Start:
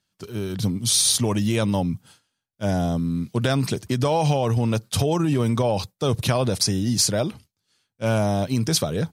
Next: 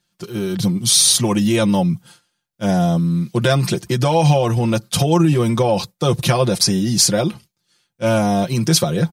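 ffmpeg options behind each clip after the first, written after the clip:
-af "aecho=1:1:5.7:0.75,volume=1.58"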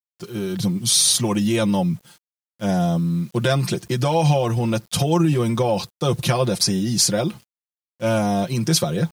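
-af "acrusher=bits=7:mix=0:aa=0.000001,volume=0.668"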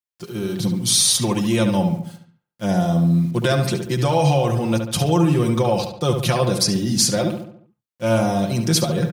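-filter_complex "[0:a]asplit=2[s0][s1];[s1]adelay=71,lowpass=f=2900:p=1,volume=0.501,asplit=2[s2][s3];[s3]adelay=71,lowpass=f=2900:p=1,volume=0.49,asplit=2[s4][s5];[s5]adelay=71,lowpass=f=2900:p=1,volume=0.49,asplit=2[s6][s7];[s7]adelay=71,lowpass=f=2900:p=1,volume=0.49,asplit=2[s8][s9];[s9]adelay=71,lowpass=f=2900:p=1,volume=0.49,asplit=2[s10][s11];[s11]adelay=71,lowpass=f=2900:p=1,volume=0.49[s12];[s0][s2][s4][s6][s8][s10][s12]amix=inputs=7:normalize=0"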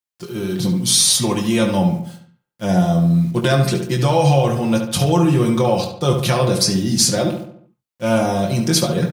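-filter_complex "[0:a]asplit=2[s0][s1];[s1]adelay=22,volume=0.473[s2];[s0][s2]amix=inputs=2:normalize=0,volume=1.19"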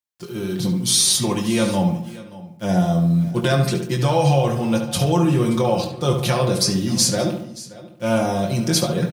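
-af "aecho=1:1:578:0.119,volume=0.75"

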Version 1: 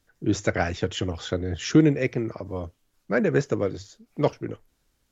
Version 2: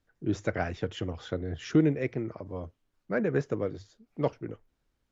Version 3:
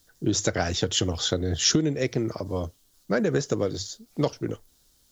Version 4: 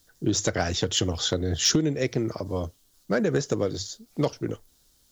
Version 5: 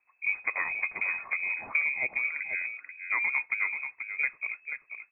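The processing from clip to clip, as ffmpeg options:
-af "lowpass=f=2500:p=1,volume=0.531"
-af "acompressor=threshold=0.0398:ratio=10,aexciter=amount=5:drive=7.4:freq=3400,volume=2.66"
-af "asoftclip=type=hard:threshold=0.224"
-af "aecho=1:1:484:0.398,lowpass=f=2200:t=q:w=0.5098,lowpass=f=2200:t=q:w=0.6013,lowpass=f=2200:t=q:w=0.9,lowpass=f=2200:t=q:w=2.563,afreqshift=-2600,volume=0.562"

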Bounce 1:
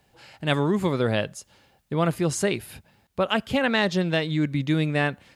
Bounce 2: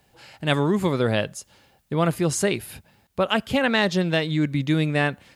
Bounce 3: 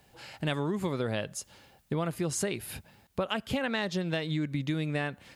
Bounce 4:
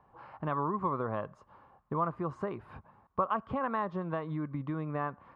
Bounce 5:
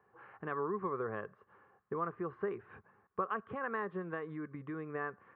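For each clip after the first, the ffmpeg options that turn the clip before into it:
-af "highshelf=f=8200:g=4,volume=1.19"
-af "acompressor=threshold=0.0398:ratio=6"
-af "lowpass=f=1100:t=q:w=8.9,volume=0.562"
-af "highpass=130,equalizer=f=150:t=q:w=4:g=-7,equalizer=f=260:t=q:w=4:g=-8,equalizer=f=420:t=q:w=4:g=8,equalizer=f=620:t=q:w=4:g=-9,equalizer=f=930:t=q:w=4:g=-9,equalizer=f=1700:t=q:w=4:g=7,lowpass=f=2800:w=0.5412,lowpass=f=2800:w=1.3066,volume=0.708"

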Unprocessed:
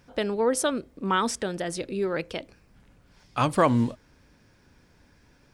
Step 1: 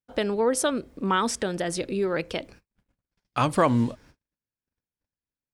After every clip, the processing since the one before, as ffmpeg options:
-filter_complex "[0:a]agate=range=0.00708:threshold=0.00251:ratio=16:detection=peak,asplit=2[s0][s1];[s1]acompressor=threshold=0.0316:ratio=6,volume=1[s2];[s0][s2]amix=inputs=2:normalize=0,volume=0.794"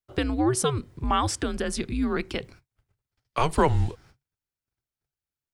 -af "afreqshift=-140"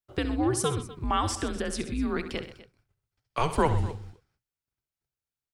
-af "aecho=1:1:67|127|249:0.251|0.178|0.126,volume=0.708"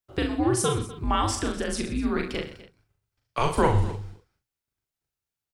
-filter_complex "[0:a]asplit=2[s0][s1];[s1]adelay=40,volume=0.631[s2];[s0][s2]amix=inputs=2:normalize=0,volume=1.19"

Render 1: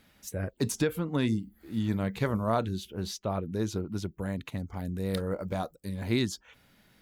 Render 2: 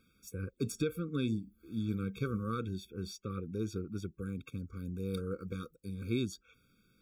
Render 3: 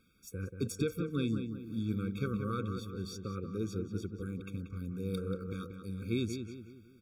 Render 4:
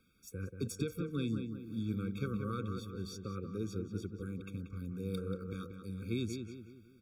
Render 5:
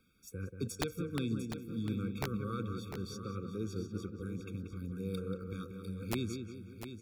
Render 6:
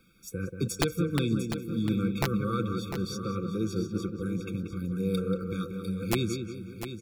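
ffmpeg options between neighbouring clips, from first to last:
-af "afftfilt=real='re*eq(mod(floor(b*sr/1024/540),2),0)':imag='im*eq(mod(floor(b*sr/1024/540),2),0)':win_size=1024:overlap=0.75,volume=0.531"
-filter_complex "[0:a]asplit=2[s0][s1];[s1]adelay=184,lowpass=f=2500:p=1,volume=0.447,asplit=2[s2][s3];[s3]adelay=184,lowpass=f=2500:p=1,volume=0.45,asplit=2[s4][s5];[s5]adelay=184,lowpass=f=2500:p=1,volume=0.45,asplit=2[s6][s7];[s7]adelay=184,lowpass=f=2500:p=1,volume=0.45,asplit=2[s8][s9];[s9]adelay=184,lowpass=f=2500:p=1,volume=0.45[s10];[s0][s2][s4][s6][s8][s10]amix=inputs=6:normalize=0"
-filter_complex "[0:a]acrossover=split=240|3000[s0][s1][s2];[s1]acompressor=threshold=0.02:ratio=6[s3];[s0][s3][s2]amix=inputs=3:normalize=0,volume=0.794"
-af "aeval=exprs='(mod(17.8*val(0)+1,2)-1)/17.8':c=same,aecho=1:1:700:0.316"
-af "aecho=1:1:5.9:0.42,volume=2.51"

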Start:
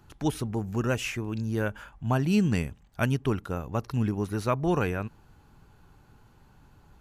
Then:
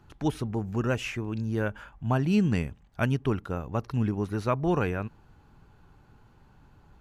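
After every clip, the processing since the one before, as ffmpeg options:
-af "highshelf=f=6200:g=-10.5"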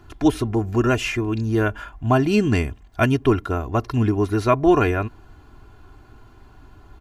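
-af "aecho=1:1:2.9:0.69,volume=2.51"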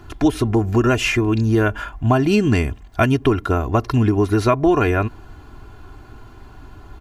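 -af "acompressor=threshold=0.112:ratio=4,volume=2.11"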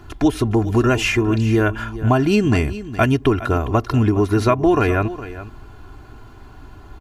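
-af "aecho=1:1:412:0.188"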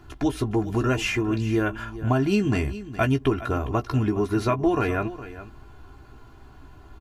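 -filter_complex "[0:a]asplit=2[s0][s1];[s1]adelay=15,volume=0.398[s2];[s0][s2]amix=inputs=2:normalize=0,volume=0.447"

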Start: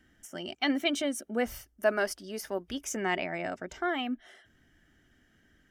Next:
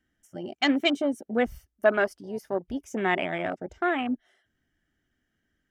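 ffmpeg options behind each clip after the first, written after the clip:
-af "afwtdn=0.0158,volume=1.78"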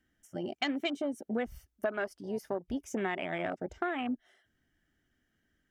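-af "acompressor=threshold=0.0316:ratio=6"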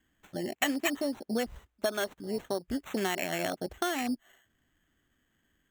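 -af "equalizer=f=3500:w=2:g=6.5,acrusher=samples=9:mix=1:aa=0.000001,volume=1.26"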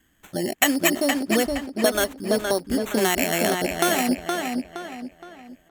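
-filter_complex "[0:a]equalizer=f=11000:w=0.7:g=7.5,asplit=2[s0][s1];[s1]adelay=468,lowpass=f=4500:p=1,volume=0.631,asplit=2[s2][s3];[s3]adelay=468,lowpass=f=4500:p=1,volume=0.4,asplit=2[s4][s5];[s5]adelay=468,lowpass=f=4500:p=1,volume=0.4,asplit=2[s6][s7];[s7]adelay=468,lowpass=f=4500:p=1,volume=0.4,asplit=2[s8][s9];[s9]adelay=468,lowpass=f=4500:p=1,volume=0.4[s10];[s0][s2][s4][s6][s8][s10]amix=inputs=6:normalize=0,volume=2.66"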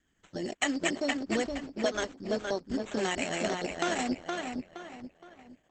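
-af "volume=0.376" -ar 48000 -c:a libopus -b:a 10k

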